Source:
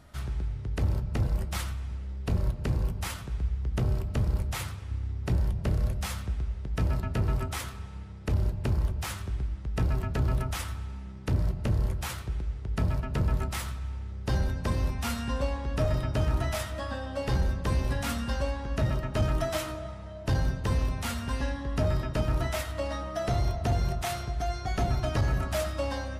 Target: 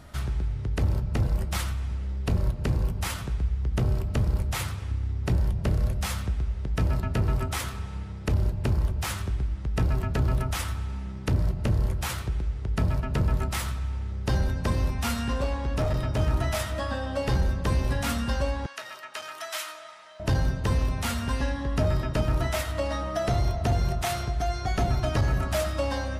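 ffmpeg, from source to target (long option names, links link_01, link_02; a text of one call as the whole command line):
ffmpeg -i in.wav -filter_complex "[0:a]asplit=2[link_01][link_02];[link_02]acompressor=threshold=-35dB:ratio=6,volume=1dB[link_03];[link_01][link_03]amix=inputs=2:normalize=0,asettb=1/sr,asplit=3[link_04][link_05][link_06];[link_04]atrim=end=15.134[link_07];[link_05]atrim=start=15.13:end=16.19,asetpts=PTS-STARTPTS,afade=type=in:duration=0.004:curve=qsin,afade=type=out:start_time=1.056:duration=0.004:curve=qsin,volume=21.5dB,asoftclip=hard,volume=-21.5dB[link_08];[link_06]atrim=start=16.186[link_09];[link_07][link_08]acrossfade=duration=0.004:curve1=hsin:curve2=qsin[link_10];[link_10][link_09]acrossfade=duration=0.004:curve1=qsin:curve2=hsin,asettb=1/sr,asplit=3[link_11][link_12][link_13];[link_11]atrim=end=18.664[link_14];[link_12]atrim=start=18.66:end=20.2,asetpts=PTS-STARTPTS,afade=type=in:duration=0.004:curve=qsin,afade=type=out:start_time=1.536:duration=0.004:curve=qsin,highpass=1300[link_15];[link_13]atrim=start=20.196[link_16];[link_14][link_15]acrossfade=duration=0.004:curve1=hsin:curve2=qsin[link_17];[link_17][link_16]acrossfade=duration=0.004:curve1=qsin:curve2=hsin" out.wav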